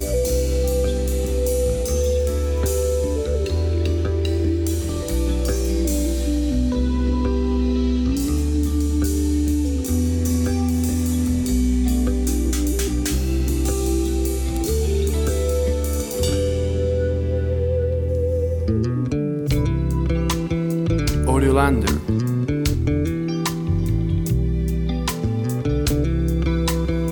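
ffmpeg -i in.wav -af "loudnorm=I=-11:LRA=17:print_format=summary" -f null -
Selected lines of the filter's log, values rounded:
Input Integrated:    -21.4 LUFS
Input True Peak:      -3.9 dBTP
Input LRA:             1.5 LU
Input Threshold:     -31.4 LUFS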